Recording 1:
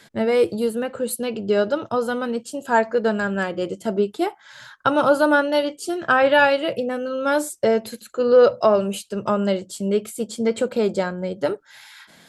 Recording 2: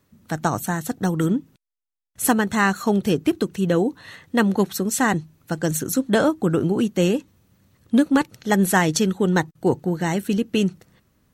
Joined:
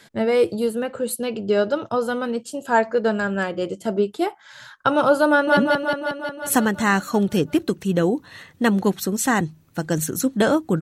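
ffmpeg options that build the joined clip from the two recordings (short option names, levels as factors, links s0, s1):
-filter_complex "[0:a]apad=whole_dur=10.81,atrim=end=10.81,atrim=end=5.572[s0];[1:a]atrim=start=1.298:end=6.54[s1];[s0][s1]acrossfade=d=0.004:c1=hsin:c2=hsin,asplit=2[s2][s3];[s3]afade=t=in:st=5.29:d=0.01,afade=t=out:st=5.57:d=0.01,aecho=0:1:180|360|540|720|900|1080|1260|1440|1620|1800|1980|2160:0.891251|0.623876|0.436713|0.305699|0.213989|0.149793|0.104855|0.0733983|0.0513788|0.0359652|0.0251756|0.0176229[s4];[s2][s4]amix=inputs=2:normalize=0"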